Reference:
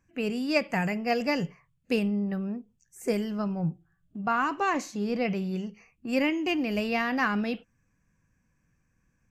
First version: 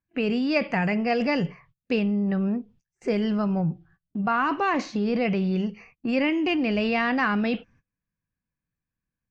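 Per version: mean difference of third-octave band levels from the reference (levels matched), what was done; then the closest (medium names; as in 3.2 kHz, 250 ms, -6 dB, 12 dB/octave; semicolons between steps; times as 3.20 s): 3.0 dB: low-pass 4.7 kHz 24 dB/octave; gate -60 dBFS, range -25 dB; in parallel at 0 dB: compressor with a negative ratio -32 dBFS, ratio -1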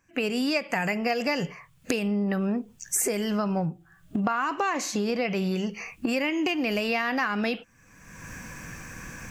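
4.5 dB: recorder AGC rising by 36 dB/s; bass shelf 300 Hz -11 dB; compression, threshold -29 dBFS, peak gain reduction 8.5 dB; trim +6.5 dB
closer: first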